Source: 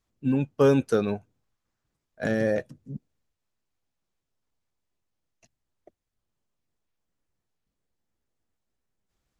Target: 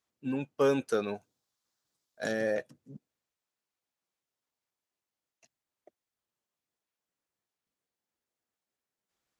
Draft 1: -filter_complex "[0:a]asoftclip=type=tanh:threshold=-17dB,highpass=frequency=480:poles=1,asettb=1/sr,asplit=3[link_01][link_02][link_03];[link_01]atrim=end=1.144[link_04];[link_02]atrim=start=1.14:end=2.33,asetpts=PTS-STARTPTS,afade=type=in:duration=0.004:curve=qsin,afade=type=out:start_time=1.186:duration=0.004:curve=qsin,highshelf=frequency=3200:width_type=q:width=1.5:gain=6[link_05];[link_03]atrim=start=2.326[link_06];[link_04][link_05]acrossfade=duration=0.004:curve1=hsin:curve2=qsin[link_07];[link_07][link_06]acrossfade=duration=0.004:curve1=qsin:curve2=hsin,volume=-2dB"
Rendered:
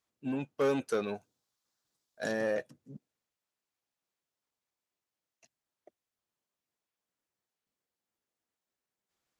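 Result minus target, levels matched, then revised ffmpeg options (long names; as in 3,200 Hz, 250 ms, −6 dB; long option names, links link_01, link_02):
soft clipping: distortion +16 dB
-filter_complex "[0:a]asoftclip=type=tanh:threshold=-6.5dB,highpass=frequency=480:poles=1,asettb=1/sr,asplit=3[link_01][link_02][link_03];[link_01]atrim=end=1.144[link_04];[link_02]atrim=start=1.14:end=2.33,asetpts=PTS-STARTPTS,afade=type=in:duration=0.004:curve=qsin,afade=type=out:start_time=1.186:duration=0.004:curve=qsin,highshelf=frequency=3200:width_type=q:width=1.5:gain=6[link_05];[link_03]atrim=start=2.326[link_06];[link_04][link_05]acrossfade=duration=0.004:curve1=hsin:curve2=qsin[link_07];[link_07][link_06]acrossfade=duration=0.004:curve1=qsin:curve2=hsin,volume=-2dB"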